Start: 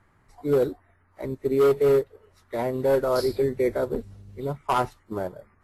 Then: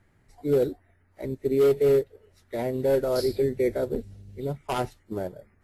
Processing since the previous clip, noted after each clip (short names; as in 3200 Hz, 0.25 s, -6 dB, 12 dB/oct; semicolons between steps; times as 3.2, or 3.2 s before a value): bell 1100 Hz -11.5 dB 0.79 oct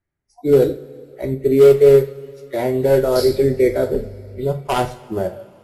spectral noise reduction 27 dB; two-slope reverb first 0.35 s, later 3.2 s, from -22 dB, DRR 5 dB; gain +8 dB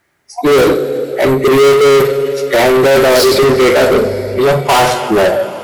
overdrive pedal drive 35 dB, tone 8000 Hz, clips at -1 dBFS; gain -1 dB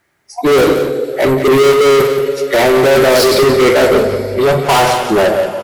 echo 0.177 s -9.5 dB; gain -1 dB